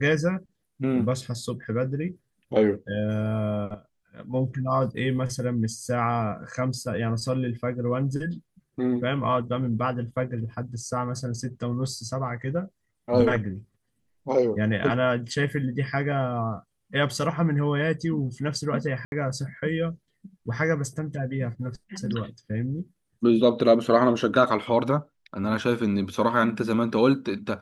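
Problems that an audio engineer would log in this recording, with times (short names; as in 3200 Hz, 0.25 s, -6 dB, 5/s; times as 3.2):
19.05–19.12 gap 71 ms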